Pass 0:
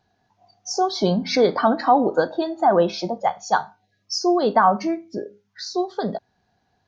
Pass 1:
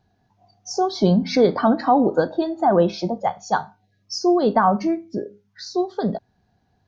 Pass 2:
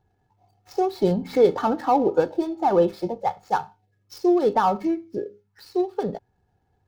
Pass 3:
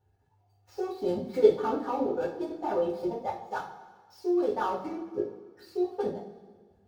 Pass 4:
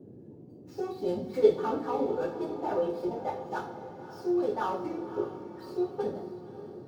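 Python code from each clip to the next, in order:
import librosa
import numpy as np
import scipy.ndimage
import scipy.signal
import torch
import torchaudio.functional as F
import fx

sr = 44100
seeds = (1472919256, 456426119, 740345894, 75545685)

y1 = fx.low_shelf(x, sr, hz=340.0, db=10.5)
y1 = y1 * librosa.db_to_amplitude(-3.0)
y2 = scipy.signal.medfilt(y1, 15)
y2 = y2 + 0.51 * np.pad(y2, (int(2.3 * sr / 1000.0), 0))[:len(y2)]
y2 = y2 * librosa.db_to_amplitude(-3.0)
y3 = fx.transient(y2, sr, attack_db=-2, sustain_db=-6)
y3 = fx.level_steps(y3, sr, step_db=14)
y3 = fx.rev_double_slope(y3, sr, seeds[0], early_s=0.36, late_s=1.7, knee_db=-17, drr_db=-9.0)
y3 = y3 * librosa.db_to_amplitude(-8.5)
y4 = fx.dmg_noise_band(y3, sr, seeds[1], low_hz=97.0, high_hz=420.0, level_db=-48.0)
y4 = fx.echo_diffused(y4, sr, ms=565, feedback_pct=50, wet_db=-12)
y4 = y4 * librosa.db_to_amplitude(-1.5)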